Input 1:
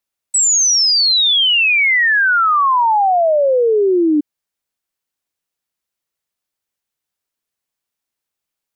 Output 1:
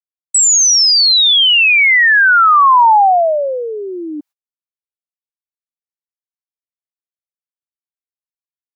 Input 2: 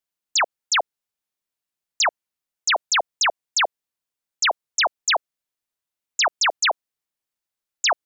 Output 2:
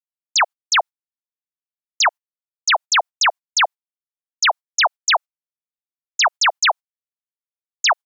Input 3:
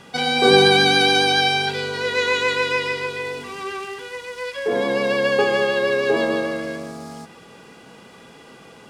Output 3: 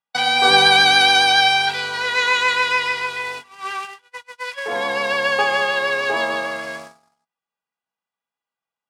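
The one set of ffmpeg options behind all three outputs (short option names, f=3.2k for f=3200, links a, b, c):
-af "agate=range=-47dB:threshold=-30dB:ratio=16:detection=peak,lowshelf=f=580:t=q:w=1.5:g=-11,volume=3dB"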